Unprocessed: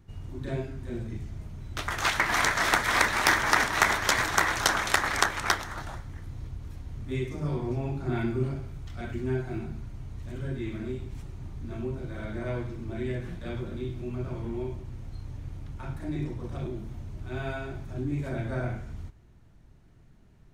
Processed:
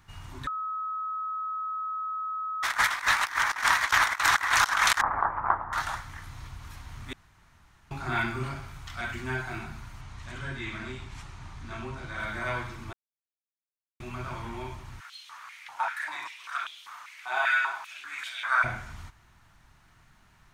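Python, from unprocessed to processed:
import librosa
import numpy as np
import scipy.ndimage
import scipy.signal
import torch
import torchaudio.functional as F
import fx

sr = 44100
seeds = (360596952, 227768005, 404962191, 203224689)

y = fx.lowpass(x, sr, hz=1000.0, slope=24, at=(5.01, 5.73))
y = fx.lowpass(y, sr, hz=8100.0, slope=12, at=(10.01, 12.2))
y = fx.filter_held_highpass(y, sr, hz=5.1, low_hz=790.0, high_hz=3200.0, at=(14.99, 18.63), fade=0.02)
y = fx.edit(y, sr, fx.bleep(start_s=0.47, length_s=2.16, hz=1280.0, db=-22.5),
    fx.reverse_span(start_s=3.77, length_s=0.46),
    fx.room_tone_fill(start_s=7.13, length_s=0.78),
    fx.silence(start_s=12.93, length_s=1.07), tone=tone)
y = fx.low_shelf_res(y, sr, hz=690.0, db=-13.5, q=1.5)
y = fx.over_compress(y, sr, threshold_db=-29.0, ratio=-0.5)
y = y * 10.0 ** (3.5 / 20.0)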